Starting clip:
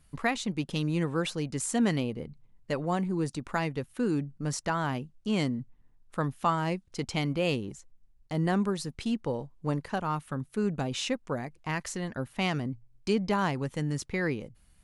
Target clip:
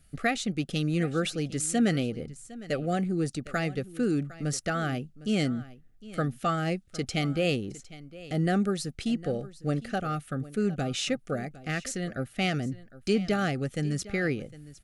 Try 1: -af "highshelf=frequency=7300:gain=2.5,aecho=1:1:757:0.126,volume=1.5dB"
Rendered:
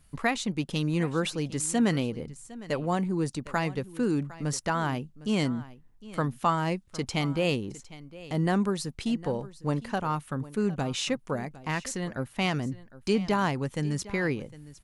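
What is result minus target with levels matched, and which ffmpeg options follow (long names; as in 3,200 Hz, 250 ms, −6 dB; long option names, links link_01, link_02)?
1,000 Hz band +3.0 dB
-af "asuperstop=centerf=970:order=12:qfactor=2.7,highshelf=frequency=7300:gain=2.5,aecho=1:1:757:0.126,volume=1.5dB"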